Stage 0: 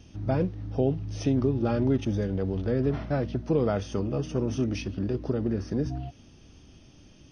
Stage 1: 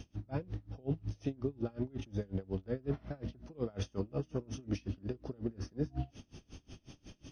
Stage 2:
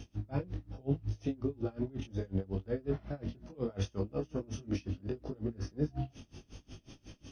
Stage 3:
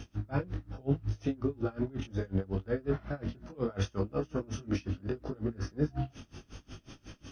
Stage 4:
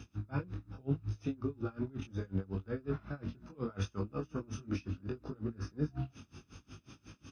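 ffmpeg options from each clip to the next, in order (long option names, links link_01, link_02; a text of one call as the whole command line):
ffmpeg -i in.wav -af "areverse,acompressor=threshold=-34dB:ratio=6,areverse,aeval=exprs='val(0)*pow(10,-28*(0.5-0.5*cos(2*PI*5.5*n/s))/20)':channel_layout=same,volume=5dB" out.wav
ffmpeg -i in.wav -af "flanger=delay=18.5:depth=4:speed=0.72,volume=4.5dB" out.wav
ffmpeg -i in.wav -af "equalizer=frequency=1400:width_type=o:width=0.87:gain=8.5,volume=2.5dB" out.wav
ffmpeg -i in.wav -af "highpass=70,aecho=1:1:0.8:0.41,volume=-5.5dB" out.wav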